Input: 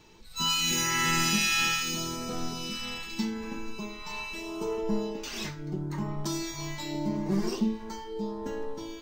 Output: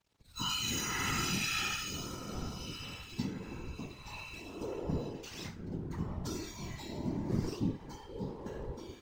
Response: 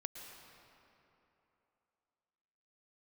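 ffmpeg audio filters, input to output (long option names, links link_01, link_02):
-af "aeval=exprs='sgn(val(0))*max(abs(val(0))-0.00266,0)':channel_layout=same,afftfilt=real='hypot(re,im)*cos(2*PI*random(0))':imag='hypot(re,im)*sin(2*PI*random(1))':win_size=512:overlap=0.75,equalizer=frequency=85:width=0.57:gain=6,volume=-2dB"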